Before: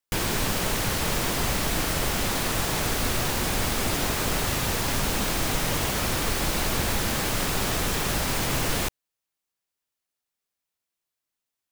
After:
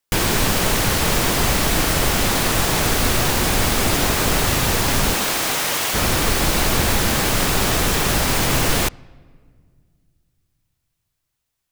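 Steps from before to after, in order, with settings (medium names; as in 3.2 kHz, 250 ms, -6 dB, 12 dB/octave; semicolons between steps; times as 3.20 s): 5.13–5.93 s: high-pass 370 Hz -> 990 Hz 6 dB/octave; on a send: reverberation RT60 1.9 s, pre-delay 3 ms, DRR 24 dB; on the sum: trim +7.5 dB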